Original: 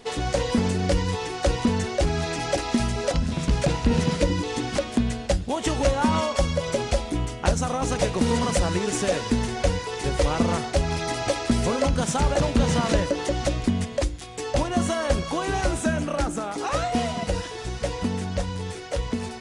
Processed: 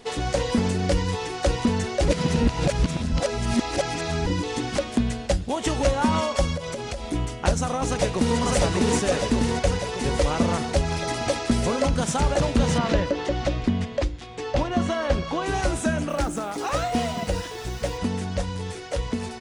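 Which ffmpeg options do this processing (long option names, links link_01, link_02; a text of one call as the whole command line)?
ffmpeg -i in.wav -filter_complex "[0:a]asettb=1/sr,asplit=3[link_01][link_02][link_03];[link_01]atrim=end=6.564[link_04];[link_02]atrim=start=6.56:end=7.04,asetpts=PTS-STARTPTS,afade=type=in:duration=0.004:curve=qsin,afade=type=out:start_time=0.476:duration=0.004:curve=qsin,acompressor=threshold=-27dB:ratio=6:attack=3.2:release=140:knee=1:detection=peak[link_05];[link_03]atrim=start=7.036[link_06];[link_04][link_05]acrossfade=duration=0.004:curve1=hsin:curve2=qsin[link_07];[link_07][link_06]acrossfade=duration=0.004:curve1=qsin:curve2=hsin,asplit=2[link_08][link_09];[link_09]afade=type=in:start_time=7.85:duration=0.01,afade=type=out:start_time=8.39:duration=0.01,aecho=0:1:600|1200|1800|2400|3000|3600|4200|4800|5400|6000|6600:0.891251|0.579313|0.376554|0.24476|0.159094|0.103411|0.0672172|0.0436912|0.0283992|0.0184595|0.0119987[link_10];[link_08][link_10]amix=inputs=2:normalize=0,asettb=1/sr,asplit=3[link_11][link_12][link_13];[link_11]atrim=end=12.784[link_14];[link_12]atrim=start=12.78:end=15.46,asetpts=PTS-STARTPTS,afade=type=in:duration=0.004:curve=qsin,afade=type=out:start_time=2.676:duration=0.004:curve=qsin,lowpass=4500[link_15];[link_13]atrim=start=15.456[link_16];[link_14][link_15]acrossfade=duration=0.004:curve1=hsin:curve2=qsin[link_17];[link_17][link_16]acrossfade=duration=0.004:curve1=qsin:curve2=hsin,asettb=1/sr,asplit=3[link_18][link_19][link_20];[link_18]atrim=end=16.094[link_21];[link_19]atrim=start=16.09:end=17.98,asetpts=PTS-STARTPTS,afade=type=in:duration=0.004:curve=qsin,afade=type=out:start_time=1.886:duration=0.004:curve=qsin,acrusher=bits=9:dc=4:mix=0:aa=0.000001[link_22];[link_20]atrim=start=17.976[link_23];[link_21][link_22]acrossfade=duration=0.004:curve1=hsin:curve2=qsin[link_24];[link_24][link_23]acrossfade=duration=0.004:curve1=qsin:curve2=hsin,asplit=3[link_25][link_26][link_27];[link_25]atrim=end=2.082[link_28];[link_26]atrim=start=2.078:end=4.262,asetpts=PTS-STARTPTS,areverse[link_29];[link_27]atrim=start=4.258[link_30];[link_28][link_29]acrossfade=duration=0.004:curve1=hsin:curve2=hsin[link_31];[link_31][link_30]acrossfade=duration=0.004:curve1=hsin:curve2=hsin" out.wav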